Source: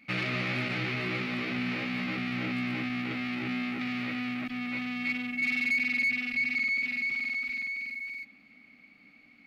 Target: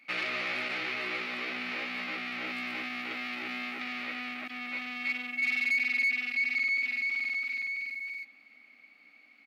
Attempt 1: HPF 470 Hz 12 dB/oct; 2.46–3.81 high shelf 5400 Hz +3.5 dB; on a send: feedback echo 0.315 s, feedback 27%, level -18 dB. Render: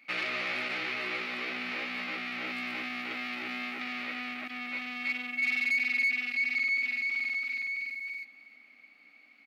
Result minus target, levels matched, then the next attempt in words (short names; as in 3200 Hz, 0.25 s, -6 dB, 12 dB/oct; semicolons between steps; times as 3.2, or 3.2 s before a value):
echo-to-direct +8.5 dB
HPF 470 Hz 12 dB/oct; 2.46–3.81 high shelf 5400 Hz +3.5 dB; on a send: feedback echo 0.315 s, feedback 27%, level -26.5 dB